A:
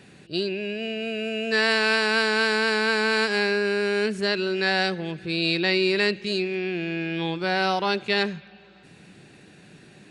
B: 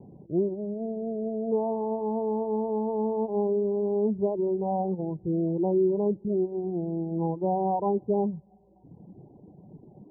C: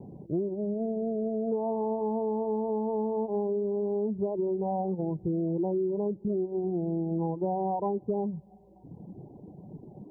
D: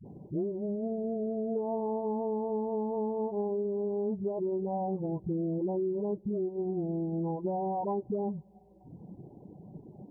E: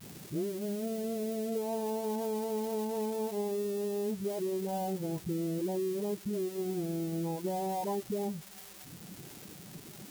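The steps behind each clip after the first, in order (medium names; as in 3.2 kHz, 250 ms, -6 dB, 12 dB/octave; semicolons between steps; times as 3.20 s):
steep low-pass 960 Hz 96 dB/octave; reverb removal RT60 1.1 s; bass shelf 380 Hz +5.5 dB
compression, threshold -30 dBFS, peak gain reduction 10 dB; trim +3.5 dB
phase dispersion highs, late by 55 ms, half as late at 330 Hz; trim -2.5 dB
zero-crossing glitches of -30.5 dBFS; trim -2 dB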